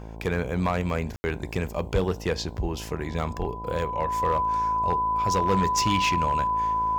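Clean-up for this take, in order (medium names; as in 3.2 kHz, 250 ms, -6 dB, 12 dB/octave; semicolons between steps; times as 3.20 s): clip repair -16.5 dBFS; de-hum 55 Hz, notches 19; band-stop 1 kHz, Q 30; room tone fill 1.16–1.24 s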